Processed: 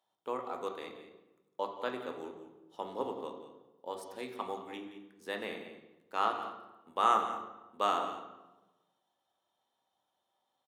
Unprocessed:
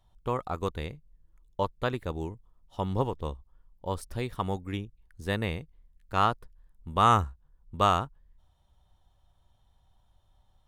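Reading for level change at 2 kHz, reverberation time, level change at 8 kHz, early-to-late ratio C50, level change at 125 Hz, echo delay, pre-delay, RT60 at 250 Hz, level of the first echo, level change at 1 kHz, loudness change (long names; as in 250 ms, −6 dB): −5.5 dB, 1.1 s, −6.5 dB, 6.5 dB, below −25 dB, 174 ms, 3 ms, 1.4 s, −14.0 dB, −5.0 dB, −6.0 dB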